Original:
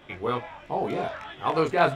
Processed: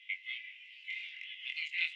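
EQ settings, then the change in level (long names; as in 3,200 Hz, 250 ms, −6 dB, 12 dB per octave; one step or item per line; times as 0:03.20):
Chebyshev high-pass with heavy ripple 2,000 Hz, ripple 9 dB
high-frequency loss of the air 370 metres
+13.0 dB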